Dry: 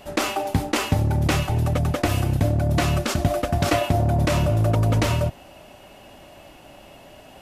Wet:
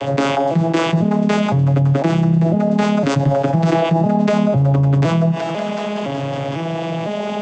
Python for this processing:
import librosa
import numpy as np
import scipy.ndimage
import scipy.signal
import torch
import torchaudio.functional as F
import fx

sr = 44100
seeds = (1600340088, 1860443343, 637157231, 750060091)

y = fx.vocoder_arp(x, sr, chord='minor triad', root=49, every_ms=504)
y = fx.clip_asym(y, sr, top_db=-13.5, bottom_db=-12.5)
y = fx.echo_thinned(y, sr, ms=187, feedback_pct=80, hz=560.0, wet_db=-20)
y = fx.env_flatten(y, sr, amount_pct=70)
y = F.gain(torch.from_numpy(y), 3.5).numpy()